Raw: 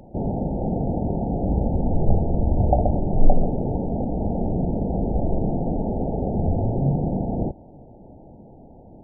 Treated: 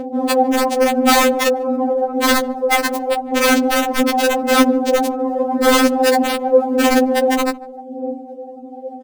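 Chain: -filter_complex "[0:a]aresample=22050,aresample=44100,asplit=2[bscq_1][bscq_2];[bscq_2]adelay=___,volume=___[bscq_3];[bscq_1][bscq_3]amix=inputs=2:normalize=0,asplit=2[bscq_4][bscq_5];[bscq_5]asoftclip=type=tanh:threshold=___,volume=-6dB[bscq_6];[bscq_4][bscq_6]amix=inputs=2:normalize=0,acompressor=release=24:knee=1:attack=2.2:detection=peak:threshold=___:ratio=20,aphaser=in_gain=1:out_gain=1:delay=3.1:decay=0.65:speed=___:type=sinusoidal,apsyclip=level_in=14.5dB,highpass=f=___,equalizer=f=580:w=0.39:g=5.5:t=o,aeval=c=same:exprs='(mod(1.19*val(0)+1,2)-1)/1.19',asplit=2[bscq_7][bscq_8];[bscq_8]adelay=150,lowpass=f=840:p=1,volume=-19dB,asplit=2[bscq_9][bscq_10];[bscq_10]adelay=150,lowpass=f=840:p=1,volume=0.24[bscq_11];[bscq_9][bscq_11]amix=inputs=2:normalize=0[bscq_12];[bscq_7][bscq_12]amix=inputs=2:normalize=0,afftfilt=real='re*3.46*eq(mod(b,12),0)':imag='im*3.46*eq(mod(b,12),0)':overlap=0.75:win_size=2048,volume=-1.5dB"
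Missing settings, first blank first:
37, -12dB, -20dB, -21dB, 0.87, 260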